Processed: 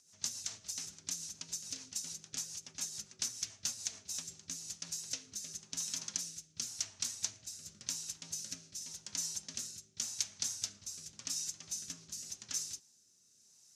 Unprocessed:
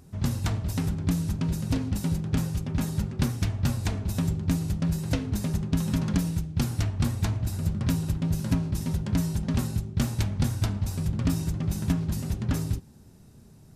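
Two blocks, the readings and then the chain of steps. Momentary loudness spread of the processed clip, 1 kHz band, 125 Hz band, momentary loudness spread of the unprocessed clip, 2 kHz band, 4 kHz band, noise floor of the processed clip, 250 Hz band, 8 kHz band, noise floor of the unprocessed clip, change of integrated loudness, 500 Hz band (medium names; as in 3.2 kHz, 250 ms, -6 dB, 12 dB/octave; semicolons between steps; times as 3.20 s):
7 LU, -20.5 dB, -36.0 dB, 2 LU, -12.5 dB, 0.0 dB, -67 dBFS, -31.5 dB, +5.5 dB, -51 dBFS, -11.5 dB, -25.0 dB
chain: rotary cabinet horn 7 Hz, later 0.9 Hz, at 3.83 s; band-pass filter 6.2 kHz, Q 3.9; trim +11.5 dB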